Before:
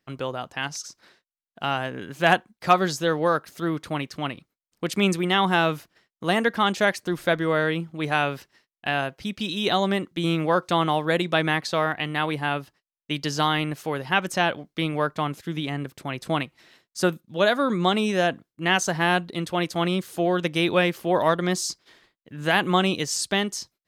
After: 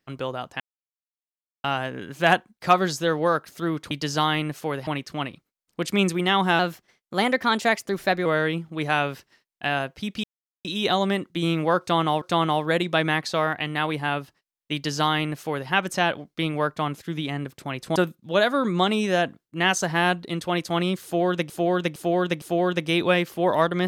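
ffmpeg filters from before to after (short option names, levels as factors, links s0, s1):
-filter_complex "[0:a]asplit=13[s0][s1][s2][s3][s4][s5][s6][s7][s8][s9][s10][s11][s12];[s0]atrim=end=0.6,asetpts=PTS-STARTPTS,afade=t=out:st=0.596:d=0.004:c=hsin[s13];[s1]atrim=start=0.6:end=1.64,asetpts=PTS-STARTPTS,volume=0[s14];[s2]atrim=start=1.64:end=3.912,asetpts=PTS-STARTPTS,afade=t=in:d=0.004:c=hsin[s15];[s3]atrim=start=13.128:end=14.092[s16];[s4]atrim=start=3.908:end=5.634[s17];[s5]atrim=start=5.63:end=7.48,asetpts=PTS-STARTPTS,asetrate=48951,aresample=44100[s18];[s6]atrim=start=7.476:end=9.46,asetpts=PTS-STARTPTS,afade=t=out:st=1.98:d=0.004:c=hsin,apad=pad_dur=0.41[s19];[s7]atrim=start=9.46:end=11.032,asetpts=PTS-STARTPTS,afade=t=in:d=0.004:c=hsin[s20];[s8]atrim=start=10.608:end=16.352[s21];[s9]atrim=start=17.008:end=20.552[s22];[s10]atrim=start=20.088:end=20.552[s23];[s11]atrim=start=20.088:end=20.552[s24];[s12]atrim=start=20.088[s25];[s13][s14][s15]concat=n=3:v=0:a=1[s26];[s26][s16]acrossfade=d=0.004:c1=hsin:c2=hsin[s27];[s27][s17]acrossfade=d=0.004:c1=hsin:c2=hsin[s28];[s28][s18]acrossfade=d=0.004:c1=hsin:c2=hsin[s29];[s19][s20]concat=n=2:v=0:a=1[s30];[s29][s30]acrossfade=d=0.004:c1=hsin:c2=hsin[s31];[s31][s21]acrossfade=d=0.004:c1=hsin:c2=hsin[s32];[s32][s22]acrossfade=d=0.004:c1=hsin:c2=hsin[s33];[s33][s23]acrossfade=d=0.004:c1=hsin:c2=hsin[s34];[s34][s24]acrossfade=d=0.004:c1=hsin:c2=hsin[s35];[s35][s25]acrossfade=d=0.004:c1=hsin:c2=hsin"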